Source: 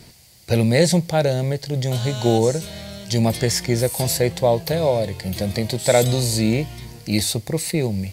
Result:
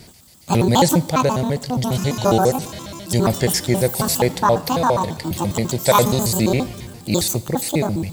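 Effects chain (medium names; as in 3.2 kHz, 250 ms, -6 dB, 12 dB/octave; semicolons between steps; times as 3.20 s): pitch shift switched off and on +9 st, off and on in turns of 68 ms; Schroeder reverb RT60 1.2 s, combs from 25 ms, DRR 18 dB; trim +2 dB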